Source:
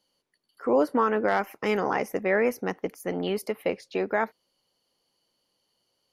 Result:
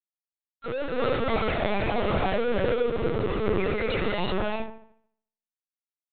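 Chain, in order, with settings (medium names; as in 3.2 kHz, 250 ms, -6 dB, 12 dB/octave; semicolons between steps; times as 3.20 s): spectral contrast enhancement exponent 3.3; reverb removal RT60 0.99 s; transient shaper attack -9 dB, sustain +12 dB; waveshaping leveller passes 3; overload inside the chain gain 28 dB; bit crusher 6-bit; feedback echo behind a low-pass 73 ms, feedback 45%, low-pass 1.6 kHz, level -8 dB; gated-style reverb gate 400 ms rising, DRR -4.5 dB; LPC vocoder at 8 kHz pitch kept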